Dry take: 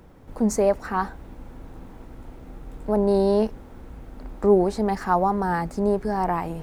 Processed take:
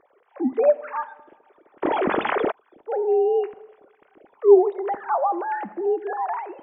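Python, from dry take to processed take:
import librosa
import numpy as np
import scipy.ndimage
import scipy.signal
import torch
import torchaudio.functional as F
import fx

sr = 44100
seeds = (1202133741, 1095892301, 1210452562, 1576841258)

y = fx.sine_speech(x, sr)
y = fx.rev_double_slope(y, sr, seeds[0], early_s=1.0, late_s=3.0, knee_db=-28, drr_db=14.0)
y = fx.env_flatten(y, sr, amount_pct=70, at=(1.82, 2.5), fade=0.02)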